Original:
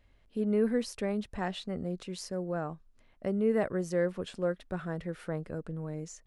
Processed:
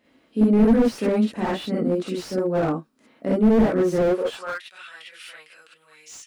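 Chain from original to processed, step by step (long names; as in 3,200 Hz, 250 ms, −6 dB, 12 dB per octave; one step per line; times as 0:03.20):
reverb whose tail is shaped and stops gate 80 ms rising, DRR −6.5 dB
high-pass filter sweep 240 Hz → 2,800 Hz, 0:04.01–0:04.70
slew-rate limiting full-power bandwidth 43 Hz
level +3.5 dB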